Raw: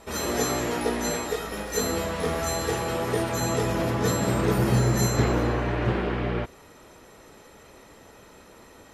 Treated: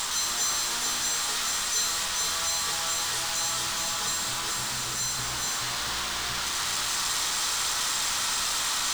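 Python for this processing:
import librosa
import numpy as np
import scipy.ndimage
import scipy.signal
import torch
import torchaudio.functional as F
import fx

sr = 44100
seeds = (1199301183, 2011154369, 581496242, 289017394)

p1 = fx.delta_mod(x, sr, bps=64000, step_db=-23.0)
p2 = p1 + fx.echo_single(p1, sr, ms=429, db=-3.5, dry=0)
p3 = fx.rider(p2, sr, range_db=10, speed_s=0.5)
p4 = fx.low_shelf_res(p3, sr, hz=710.0, db=-14.0, q=1.5)
p5 = fx.comb_fb(p4, sr, f0_hz=88.0, decay_s=1.5, harmonics='all', damping=0.0, mix_pct=60)
p6 = fx.dmg_noise_colour(p5, sr, seeds[0], colour='brown', level_db=-54.0)
p7 = fx.band_shelf(p6, sr, hz=5300.0, db=9.0, octaves=1.7)
p8 = fx.quant_companded(p7, sr, bits=2)
p9 = p7 + F.gain(torch.from_numpy(p8), -5.0).numpy()
y = F.gain(torch.from_numpy(p9), -3.5).numpy()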